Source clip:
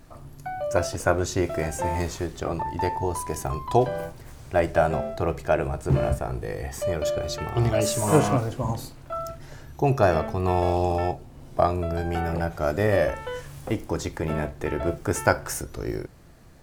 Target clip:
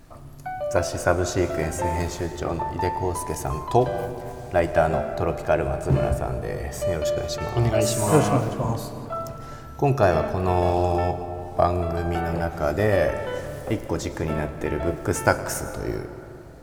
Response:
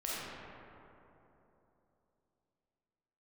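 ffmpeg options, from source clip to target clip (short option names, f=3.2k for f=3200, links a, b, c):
-filter_complex "[0:a]asplit=2[a][b];[1:a]atrim=start_sample=2205,adelay=111[c];[b][c]afir=irnorm=-1:irlink=0,volume=-15dB[d];[a][d]amix=inputs=2:normalize=0,volume=1dB"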